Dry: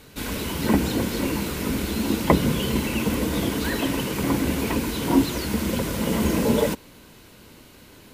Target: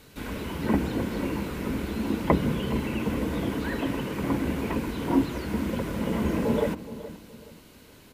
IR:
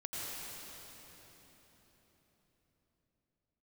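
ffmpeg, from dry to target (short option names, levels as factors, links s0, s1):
-filter_complex "[0:a]asplit=2[s0][s1];[s1]adelay=421,lowpass=f=1200:p=1,volume=0.211,asplit=2[s2][s3];[s3]adelay=421,lowpass=f=1200:p=1,volume=0.34,asplit=2[s4][s5];[s5]adelay=421,lowpass=f=1200:p=1,volume=0.34[s6];[s2][s4][s6]amix=inputs=3:normalize=0[s7];[s0][s7]amix=inputs=2:normalize=0,acrossover=split=2700[s8][s9];[s9]acompressor=threshold=0.00631:ratio=4:attack=1:release=60[s10];[s8][s10]amix=inputs=2:normalize=0,volume=0.631"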